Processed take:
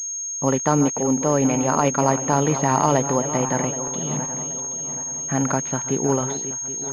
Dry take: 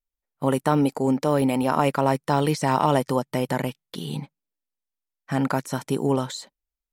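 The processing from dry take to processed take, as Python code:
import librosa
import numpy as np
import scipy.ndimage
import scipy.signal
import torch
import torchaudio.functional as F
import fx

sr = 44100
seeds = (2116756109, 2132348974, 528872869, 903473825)

y = fx.reverse_delay_fb(x, sr, ms=388, feedback_pct=64, wet_db=-11)
y = fx.pwm(y, sr, carrier_hz=6500.0)
y = F.gain(torch.from_numpy(y), 1.5).numpy()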